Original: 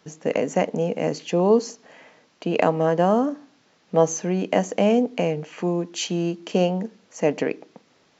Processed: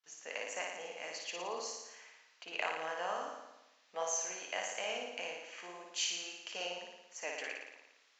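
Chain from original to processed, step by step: HPF 1400 Hz 12 dB/oct; gate with hold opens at -55 dBFS; flange 1.7 Hz, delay 3.3 ms, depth 9.4 ms, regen -64%; on a send: flutter echo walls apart 9.7 m, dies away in 0.96 s; on the sum: gain -3.5 dB

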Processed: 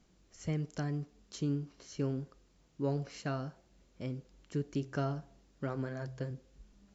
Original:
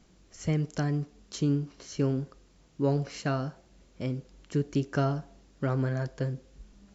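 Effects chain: 4.65–6.31 de-hum 64.56 Hz, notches 2; gain -7 dB

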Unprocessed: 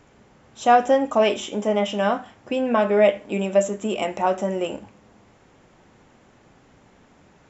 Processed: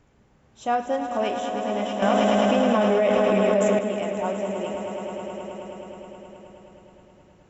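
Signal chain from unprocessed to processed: low shelf 140 Hz +9.5 dB; swelling echo 0.106 s, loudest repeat 5, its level -9.5 dB; 2.02–3.79 fast leveller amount 100%; gain -9 dB

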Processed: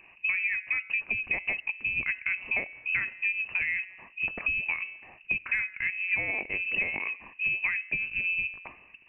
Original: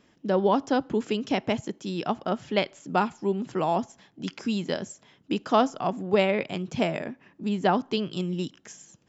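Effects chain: bell 1400 Hz -9.5 dB 0.37 oct; de-hum 184.1 Hz, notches 8; compressor 12:1, threshold -34 dBFS, peak gain reduction 17.5 dB; inverted band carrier 2800 Hz; gain +8 dB

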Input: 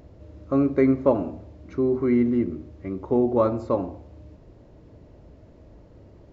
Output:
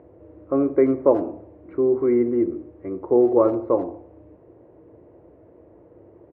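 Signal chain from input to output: speaker cabinet 100–2200 Hz, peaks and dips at 150 Hz -4 dB, 220 Hz -5 dB, 340 Hz +10 dB, 480 Hz +9 dB, 730 Hz +5 dB, 1000 Hz +4 dB; speakerphone echo 80 ms, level -21 dB; gain -3 dB

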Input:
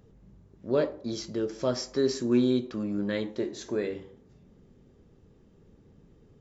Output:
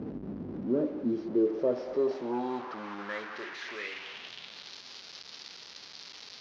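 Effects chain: delta modulation 32 kbps, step -32 dBFS; sample leveller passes 2; band-pass sweep 270 Hz -> 4600 Hz, 1.05–4.81

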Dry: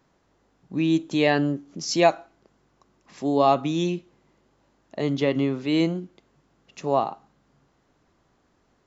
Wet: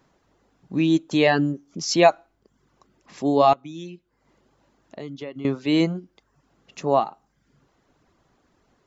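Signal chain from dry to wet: 3.53–5.45 compressor 2:1, threshold -46 dBFS, peak gain reduction 15.5 dB; reverb removal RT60 0.61 s; gain +3 dB

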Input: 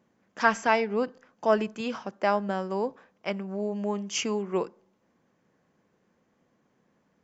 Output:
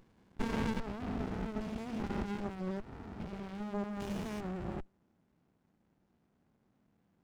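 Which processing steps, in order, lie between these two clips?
stepped spectrum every 0.4 s; running maximum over 65 samples

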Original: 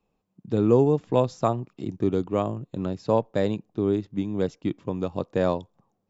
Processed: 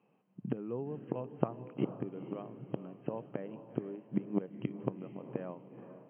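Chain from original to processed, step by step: flipped gate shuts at -21 dBFS, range -24 dB; diffused feedback echo 0.456 s, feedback 42%, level -11 dB; FFT band-pass 110–3200 Hz; gain +4 dB

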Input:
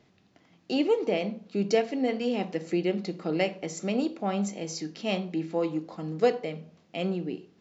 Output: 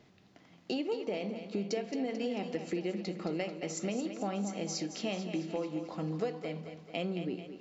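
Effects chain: compressor, threshold -33 dBFS, peak gain reduction 15 dB; thinning echo 0.22 s, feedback 54%, high-pass 180 Hz, level -9 dB; gain +1 dB

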